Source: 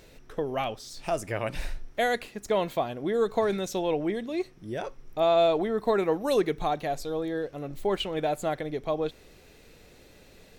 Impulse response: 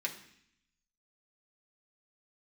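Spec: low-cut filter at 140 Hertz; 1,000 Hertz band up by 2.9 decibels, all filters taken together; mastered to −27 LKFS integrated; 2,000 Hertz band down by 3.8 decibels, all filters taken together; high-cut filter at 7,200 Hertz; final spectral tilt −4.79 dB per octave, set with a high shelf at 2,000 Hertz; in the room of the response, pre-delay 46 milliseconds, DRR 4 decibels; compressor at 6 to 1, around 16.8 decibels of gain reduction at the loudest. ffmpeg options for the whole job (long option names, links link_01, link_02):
-filter_complex "[0:a]highpass=140,lowpass=7200,equalizer=frequency=1000:width_type=o:gain=6.5,highshelf=frequency=2000:gain=-5.5,equalizer=frequency=2000:width_type=o:gain=-4,acompressor=threshold=-36dB:ratio=6,asplit=2[link_01][link_02];[1:a]atrim=start_sample=2205,adelay=46[link_03];[link_02][link_03]afir=irnorm=-1:irlink=0,volume=-6.5dB[link_04];[link_01][link_04]amix=inputs=2:normalize=0,volume=12.5dB"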